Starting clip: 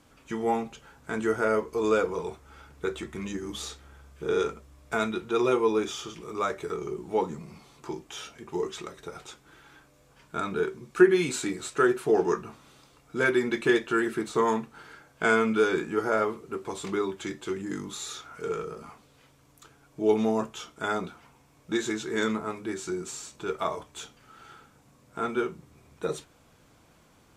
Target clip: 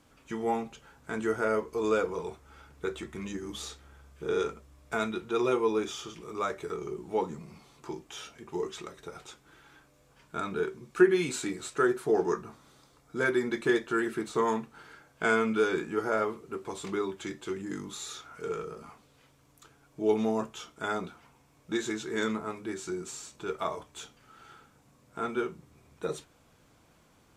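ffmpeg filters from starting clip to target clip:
-filter_complex "[0:a]asettb=1/sr,asplit=3[s0][s1][s2];[s0]atrim=end=11.774[s3];[s1]atrim=start=11.77:end=13.99,asetpts=PTS-STARTPTS,afade=t=in:d=0.004:c=qsin,afade=t=out:st=2.216:d=0.004:c=qsin,equalizer=f=2700:t=o:w=0.41:g=-6.5[s4];[s2]atrim=start=13.986[s5];[s3][s4]acrossfade=d=0.004:c1=hsin:c2=qsin[s6];[s6][s5]acrossfade=d=0.004:c1=qsin:c2=hsin,volume=0.708"

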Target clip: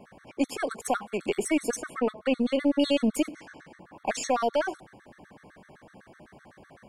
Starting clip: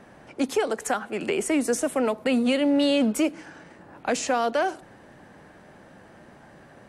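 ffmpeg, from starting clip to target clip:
-filter_complex "[0:a]asettb=1/sr,asplit=3[s0][s1][s2];[s0]atrim=end=1.764[s3];[s1]atrim=start=1.76:end=2.6,asetpts=PTS-STARTPTS,afade=t=in:d=0.004:c=qsin,afade=t=out:st=0.836:d=0.004:c=qsin,aemphasis=mode=reproduction:type=50fm[s4];[s2]atrim=start=2.596[s5];[s3][s4]acrossfade=d=0.004:c1=hsin:c2=qsin[s6];[s6][s5]acrossfade=d=0.004:c1=qsin:c2=hsin,aeval=exprs='0.211*(cos(1*acos(clip(val(0)/0.211,-1,1)))-cos(1*PI/2))+0.00668*(cos(4*acos(clip(val(0)/0.211,-1,1)))-cos(4*PI/2))':c=same,afftfilt=real='re*gt(sin(2*PI*7.9*pts/sr)*(1-2*mod(floor(b*sr/1024/1100),2)),0)':imag='im*gt(sin(2*PI*7.9*pts/sr)*(1-2*mod(floor(b*sr/1024/1100),2)),0)':win_size=1024:overlap=0.75"

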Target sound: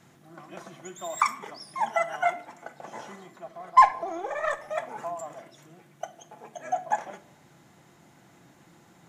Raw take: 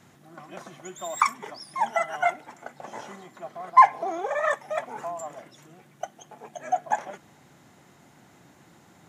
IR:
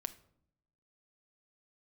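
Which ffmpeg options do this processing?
-filter_complex "[0:a]asettb=1/sr,asplit=3[s0][s1][s2];[s0]atrim=end=3.364[s3];[s1]atrim=start=3.36:end=4.6,asetpts=PTS-STARTPTS,afade=t=in:d=0.004:c=qsin,afade=t=out:st=1.236:d=0.004:c=qsin,aeval=exprs='0.562*(cos(1*acos(clip(val(0)/0.562,-1,1)))-cos(1*PI/2))+0.00355*(cos(6*acos(clip(val(0)/0.562,-1,1)))-cos(6*PI/2))+0.0178*(cos(7*acos(clip(val(0)/0.562,-1,1)))-cos(7*PI/2))':c=same[s4];[s2]atrim=start=4.596[s5];[s3][s4]acrossfade=d=0.004:c1=hsin:c2=qsin[s6];[s6][s5]acrossfade=d=0.004:c1=qsin:c2=hsin[s7];[1:a]atrim=start_sample=2205[s8];[s7][s8]afir=irnorm=-1:irlink=0"

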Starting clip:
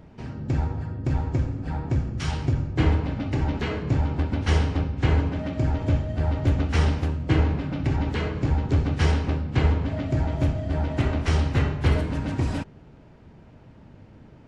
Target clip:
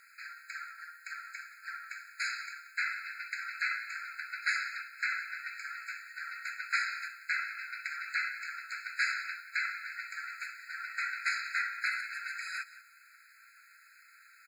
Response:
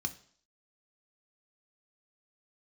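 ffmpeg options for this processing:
-filter_complex "[0:a]asplit=2[s0][s1];[s1]acompressor=threshold=0.0251:ratio=12,volume=0.794[s2];[s0][s2]amix=inputs=2:normalize=0,acrusher=bits=9:mix=0:aa=0.000001,equalizer=f=620:w=0.88:g=14,aecho=1:1:182:0.158,afftfilt=real='re*eq(mod(floor(b*sr/1024/1300),2),1)':imag='im*eq(mod(floor(b*sr/1024/1300),2),1)':win_size=1024:overlap=0.75"

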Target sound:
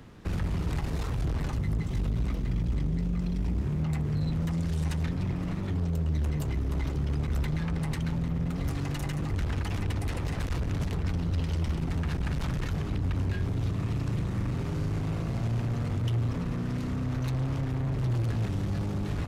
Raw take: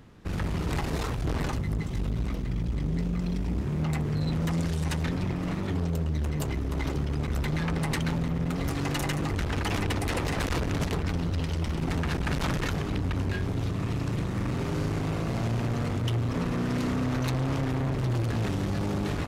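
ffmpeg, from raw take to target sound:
-filter_complex "[0:a]asplit=2[s0][s1];[s1]alimiter=level_in=1.06:limit=0.0631:level=0:latency=1,volume=0.944,volume=0.841[s2];[s0][s2]amix=inputs=2:normalize=0,acrossover=split=170[s3][s4];[s4]acompressor=threshold=0.02:ratio=6[s5];[s3][s5]amix=inputs=2:normalize=0,volume=0.75"

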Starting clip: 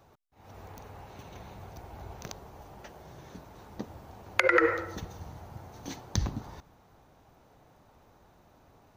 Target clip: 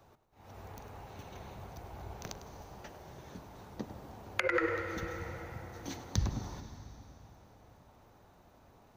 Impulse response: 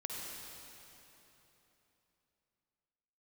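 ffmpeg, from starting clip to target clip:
-filter_complex "[0:a]bandreject=f=155.6:t=h:w=4,bandreject=f=311.2:t=h:w=4,bandreject=f=466.8:t=h:w=4,bandreject=f=622.4:t=h:w=4,bandreject=f=778:t=h:w=4,bandreject=f=933.6:t=h:w=4,bandreject=f=1089.2:t=h:w=4,bandreject=f=1244.8:t=h:w=4,bandreject=f=1400.4:t=h:w=4,bandreject=f=1556:t=h:w=4,bandreject=f=1711.6:t=h:w=4,bandreject=f=1867.2:t=h:w=4,bandreject=f=2022.8:t=h:w=4,bandreject=f=2178.4:t=h:w=4,bandreject=f=2334:t=h:w=4,bandreject=f=2489.6:t=h:w=4,bandreject=f=2645.2:t=h:w=4,bandreject=f=2800.8:t=h:w=4,bandreject=f=2956.4:t=h:w=4,asplit=2[s0][s1];[1:a]atrim=start_sample=2205,adelay=102[s2];[s1][s2]afir=irnorm=-1:irlink=0,volume=0.299[s3];[s0][s3]amix=inputs=2:normalize=0,acrossover=split=240[s4][s5];[s5]acompressor=threshold=0.0141:ratio=1.5[s6];[s4][s6]amix=inputs=2:normalize=0,volume=0.841"

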